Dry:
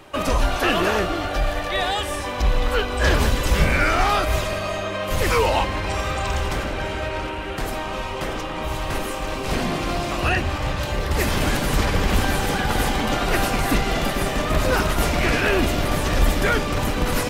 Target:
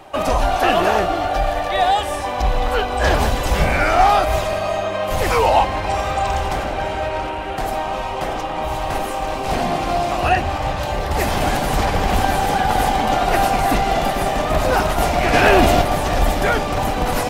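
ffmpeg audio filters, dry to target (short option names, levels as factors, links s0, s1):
-filter_complex "[0:a]equalizer=f=750:t=o:w=0.58:g=11.5,asplit=3[s0][s1][s2];[s0]afade=t=out:st=15.33:d=0.02[s3];[s1]acontrast=45,afade=t=in:st=15.33:d=0.02,afade=t=out:st=15.81:d=0.02[s4];[s2]afade=t=in:st=15.81:d=0.02[s5];[s3][s4][s5]amix=inputs=3:normalize=0"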